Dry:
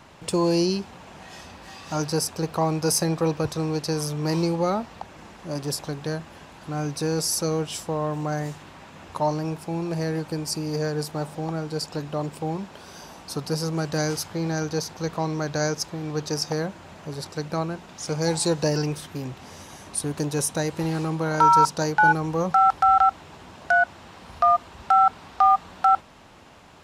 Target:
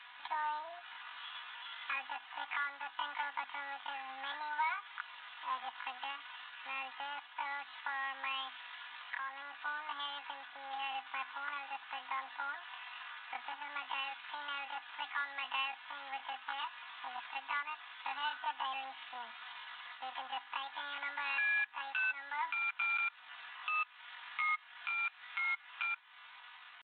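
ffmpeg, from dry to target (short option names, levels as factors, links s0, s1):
-af "acompressor=threshold=0.0355:ratio=2.5,aderivative,asetrate=78577,aresample=44100,atempo=0.561231,aecho=1:1:4.1:0.64,aresample=8000,acrusher=bits=3:mode=log:mix=0:aa=0.000001,aresample=44100,lowshelf=f=620:t=q:w=3:g=-13,alimiter=level_in=4.47:limit=0.0631:level=0:latency=1:release=465,volume=0.224,volume=3.76"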